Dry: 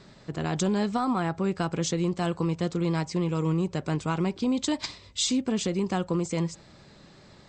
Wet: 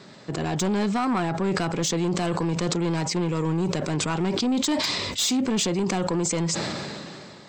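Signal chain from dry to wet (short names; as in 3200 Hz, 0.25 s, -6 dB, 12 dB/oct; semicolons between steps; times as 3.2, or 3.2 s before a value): HPF 160 Hz 12 dB/oct; soft clip -25 dBFS, distortion -12 dB; sustainer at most 23 dB/s; gain +6 dB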